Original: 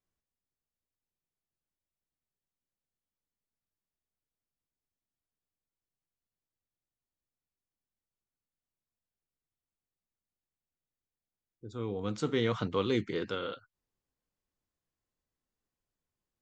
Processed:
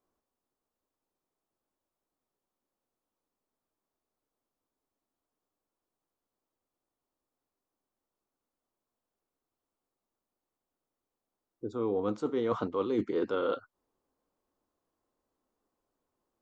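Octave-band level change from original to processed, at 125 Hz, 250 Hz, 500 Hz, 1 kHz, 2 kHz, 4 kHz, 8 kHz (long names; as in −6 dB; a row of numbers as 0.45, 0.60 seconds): −7.0 dB, +1.5 dB, +3.0 dB, +2.5 dB, −5.5 dB, −9.0 dB, can't be measured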